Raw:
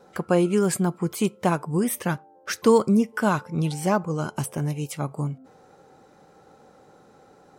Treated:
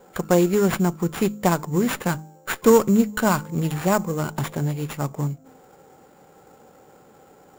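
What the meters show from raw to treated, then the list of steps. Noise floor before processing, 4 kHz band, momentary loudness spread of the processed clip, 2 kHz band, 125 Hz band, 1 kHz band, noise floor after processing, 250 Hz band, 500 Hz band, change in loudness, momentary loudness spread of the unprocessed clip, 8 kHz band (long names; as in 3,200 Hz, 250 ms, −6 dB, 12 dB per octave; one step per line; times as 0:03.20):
−55 dBFS, +2.5 dB, 12 LU, +3.0 dB, +2.0 dB, +2.0 dB, −52 dBFS, +2.0 dB, +2.5 dB, +2.0 dB, 11 LU, +1.5 dB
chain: hum removal 52.03 Hz, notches 6
sample-rate reduction 7,100 Hz, jitter 0%
windowed peak hold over 5 samples
level +2.5 dB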